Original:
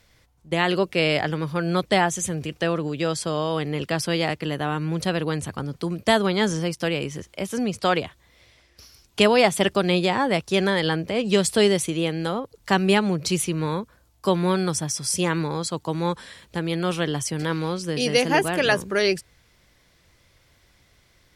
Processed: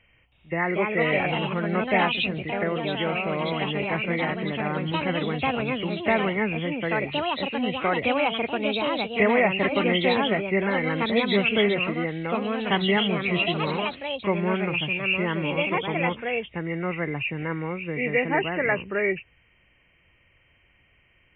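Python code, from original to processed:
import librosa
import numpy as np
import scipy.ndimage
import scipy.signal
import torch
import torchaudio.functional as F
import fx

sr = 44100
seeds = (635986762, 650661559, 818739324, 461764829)

y = fx.freq_compress(x, sr, knee_hz=1800.0, ratio=4.0)
y = fx.echo_pitch(y, sr, ms=320, semitones=3, count=2, db_per_echo=-3.0)
y = F.gain(torch.from_numpy(y), -4.0).numpy()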